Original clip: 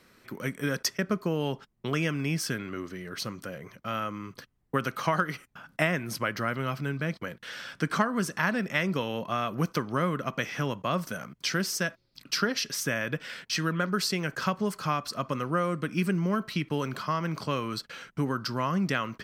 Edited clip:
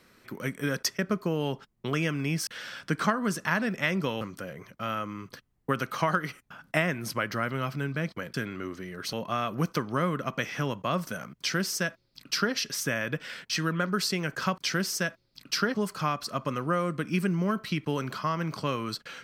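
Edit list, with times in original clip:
2.47–3.26 s: swap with 7.39–9.13 s
11.38–12.54 s: copy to 14.58 s

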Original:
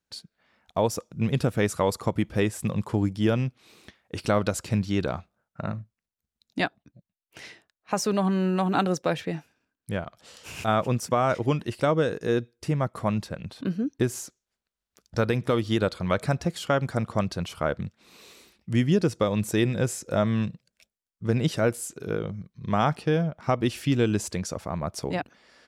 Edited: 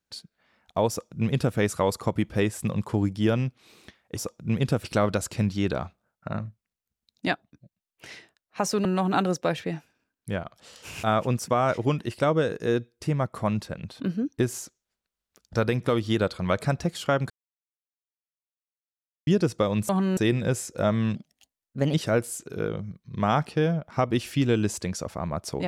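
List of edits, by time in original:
0.89–1.56 s: copy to 4.17 s
8.18–8.46 s: move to 19.50 s
16.91–18.88 s: mute
20.48–21.44 s: speed 122%

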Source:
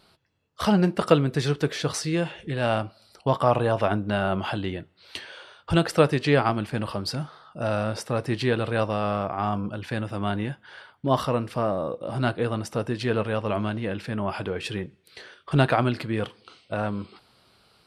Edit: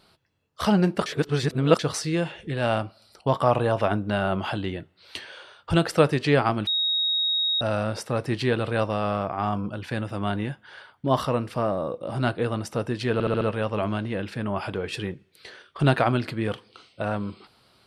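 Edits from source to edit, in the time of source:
1.06–1.79 s: reverse
6.67–7.61 s: bleep 3.77 kHz -21 dBFS
13.13 s: stutter 0.07 s, 5 plays

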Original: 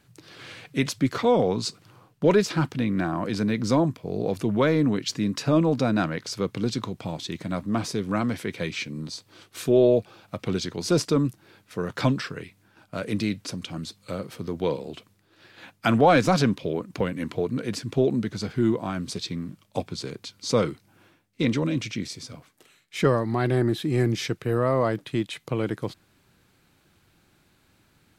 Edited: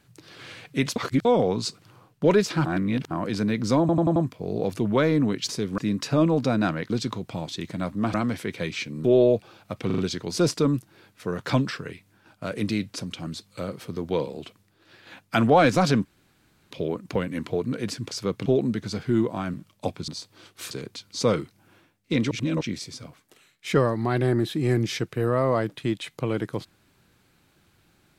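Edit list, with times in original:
0.96–1.25 s: reverse
2.66–3.11 s: reverse
3.80 s: stutter 0.09 s, 5 plays
6.25–6.61 s: move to 17.95 s
7.85–8.14 s: move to 5.13 s
9.04–9.67 s: move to 20.00 s
10.49 s: stutter 0.04 s, 4 plays
16.56 s: insert room tone 0.66 s
19.03–19.46 s: delete
21.60–21.90 s: reverse

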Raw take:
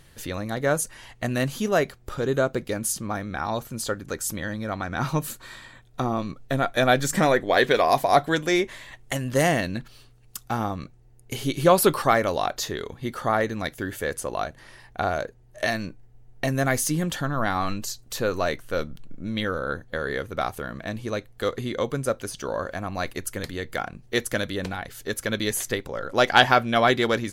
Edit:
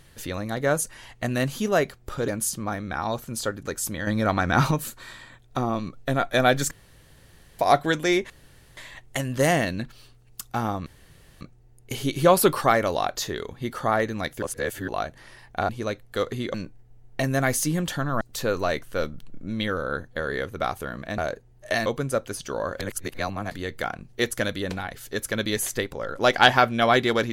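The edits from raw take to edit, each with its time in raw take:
2.28–2.71 s: delete
4.50–5.14 s: gain +7 dB
7.14–8.02 s: room tone
8.73 s: insert room tone 0.47 s
10.82 s: insert room tone 0.55 s
13.83–14.29 s: reverse
15.10–15.78 s: swap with 20.95–21.80 s
17.45–17.98 s: delete
22.74–23.45 s: reverse

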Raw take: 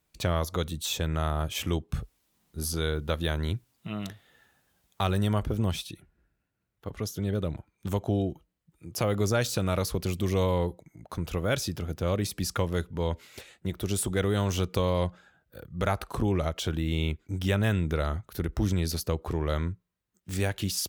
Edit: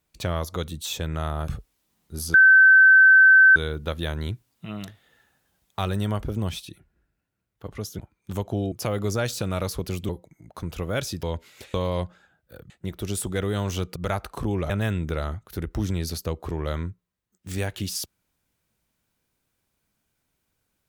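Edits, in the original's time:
1.48–1.92 s: delete
2.78 s: add tone 1.54 kHz -9.5 dBFS 1.22 s
7.21–7.55 s: delete
8.28–8.88 s: delete
10.25–10.64 s: delete
11.78–13.00 s: delete
14.77–15.73 s: move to 13.51 s
16.47–17.52 s: delete

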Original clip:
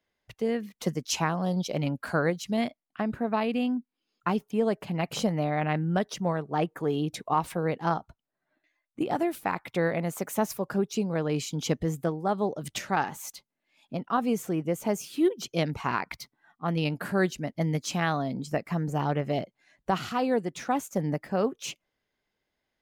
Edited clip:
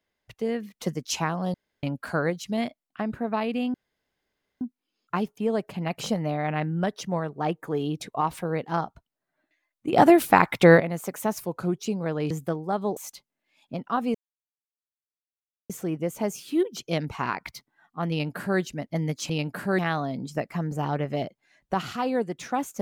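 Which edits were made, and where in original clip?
1.54–1.83 s: room tone
3.74 s: insert room tone 0.87 s
9.06–9.93 s: gain +12 dB
10.56–10.88 s: speed 90%
11.40–11.87 s: delete
12.53–13.17 s: delete
14.35 s: insert silence 1.55 s
16.76–17.25 s: copy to 17.95 s

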